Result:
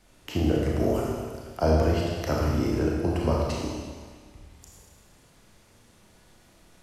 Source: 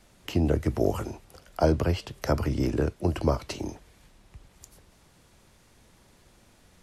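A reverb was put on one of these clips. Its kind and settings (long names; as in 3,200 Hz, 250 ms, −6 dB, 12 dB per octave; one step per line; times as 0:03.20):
four-comb reverb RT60 1.6 s, combs from 26 ms, DRR −3 dB
level −3 dB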